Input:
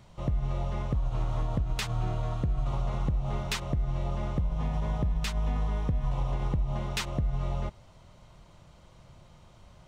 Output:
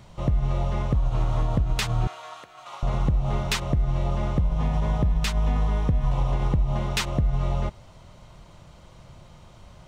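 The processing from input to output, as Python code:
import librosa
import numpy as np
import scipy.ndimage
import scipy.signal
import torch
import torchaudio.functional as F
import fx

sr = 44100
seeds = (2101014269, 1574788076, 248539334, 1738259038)

y = fx.highpass(x, sr, hz=1100.0, slope=12, at=(2.07, 2.83))
y = y * librosa.db_to_amplitude(6.0)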